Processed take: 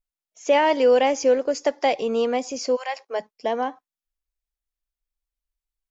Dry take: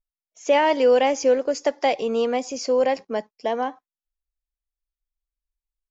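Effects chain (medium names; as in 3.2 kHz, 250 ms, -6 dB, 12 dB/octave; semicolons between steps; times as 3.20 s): 2.75–3.19 s: high-pass 1.2 kHz -> 360 Hz 24 dB/octave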